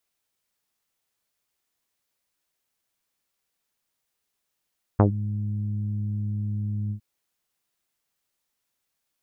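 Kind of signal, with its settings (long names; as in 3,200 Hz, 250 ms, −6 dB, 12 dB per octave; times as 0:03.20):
subtractive voice saw G#2 24 dB per octave, low-pass 190 Hz, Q 1.3, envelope 3 octaves, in 0.12 s, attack 9.4 ms, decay 0.11 s, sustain −14 dB, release 0.09 s, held 1.92 s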